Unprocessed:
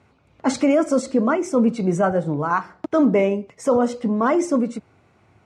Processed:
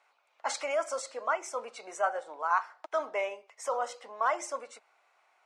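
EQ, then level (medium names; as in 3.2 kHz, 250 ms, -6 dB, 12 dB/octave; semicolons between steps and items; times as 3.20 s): high-pass 680 Hz 24 dB/octave; -5.5 dB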